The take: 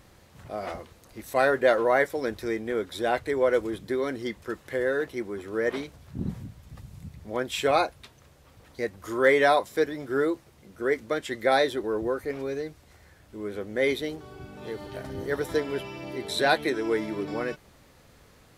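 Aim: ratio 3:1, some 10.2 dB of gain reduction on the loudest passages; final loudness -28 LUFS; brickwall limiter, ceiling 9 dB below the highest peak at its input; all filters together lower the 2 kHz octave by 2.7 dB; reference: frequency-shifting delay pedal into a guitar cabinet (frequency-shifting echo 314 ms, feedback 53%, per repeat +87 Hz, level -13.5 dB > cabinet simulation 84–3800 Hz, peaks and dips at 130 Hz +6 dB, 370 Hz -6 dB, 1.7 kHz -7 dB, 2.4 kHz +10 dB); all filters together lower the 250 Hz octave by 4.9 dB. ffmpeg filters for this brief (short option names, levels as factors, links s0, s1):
-filter_complex "[0:a]equalizer=f=250:t=o:g=-4,equalizer=f=2000:t=o:g=-3,acompressor=threshold=0.0282:ratio=3,alimiter=level_in=1.58:limit=0.0631:level=0:latency=1,volume=0.631,asplit=6[s0][s1][s2][s3][s4][s5];[s1]adelay=314,afreqshift=87,volume=0.211[s6];[s2]adelay=628,afreqshift=174,volume=0.112[s7];[s3]adelay=942,afreqshift=261,volume=0.0596[s8];[s4]adelay=1256,afreqshift=348,volume=0.0316[s9];[s5]adelay=1570,afreqshift=435,volume=0.0166[s10];[s0][s6][s7][s8][s9][s10]amix=inputs=6:normalize=0,highpass=84,equalizer=f=130:t=q:w=4:g=6,equalizer=f=370:t=q:w=4:g=-6,equalizer=f=1700:t=q:w=4:g=-7,equalizer=f=2400:t=q:w=4:g=10,lowpass=f=3800:w=0.5412,lowpass=f=3800:w=1.3066,volume=3.76"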